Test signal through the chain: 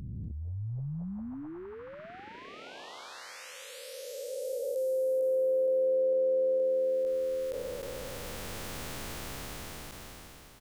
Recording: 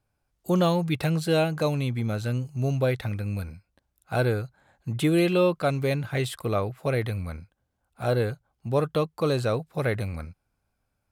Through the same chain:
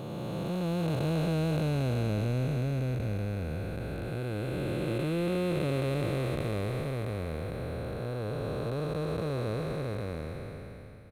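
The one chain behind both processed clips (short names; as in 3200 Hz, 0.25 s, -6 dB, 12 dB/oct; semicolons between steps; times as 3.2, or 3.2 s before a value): time blur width 1.46 s; frequency-shifting echo 0.242 s, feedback 48%, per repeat -82 Hz, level -19 dB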